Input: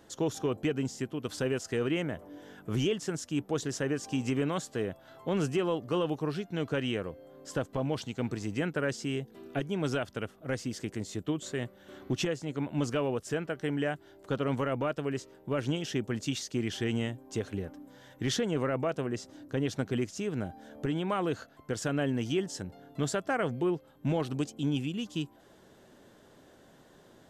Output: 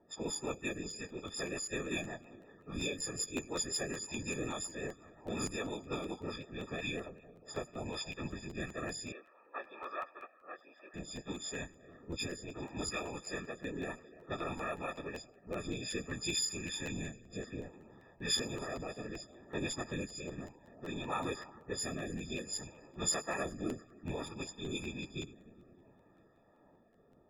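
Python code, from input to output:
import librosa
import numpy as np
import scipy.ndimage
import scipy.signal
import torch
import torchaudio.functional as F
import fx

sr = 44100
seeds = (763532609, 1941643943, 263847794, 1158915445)

y = fx.freq_snap(x, sr, grid_st=6)
y = fx.echo_heads(y, sr, ms=99, heads='first and third', feedback_pct=72, wet_db=-20.0)
y = fx.env_lowpass(y, sr, base_hz=900.0, full_db=-23.5)
y = fx.rotary_switch(y, sr, hz=5.5, then_hz=0.6, switch_at_s=7.04)
y = fx.whisperise(y, sr, seeds[0])
y = fx.cabinet(y, sr, low_hz=430.0, low_slope=24, high_hz=2400.0, hz=(440.0, 670.0, 1200.0, 2100.0), db=(-8, -5, 6, -8), at=(9.12, 10.94))
y = fx.buffer_crackle(y, sr, first_s=0.89, period_s=0.19, block=512, kind='repeat')
y = F.gain(torch.from_numpy(y), -8.0).numpy()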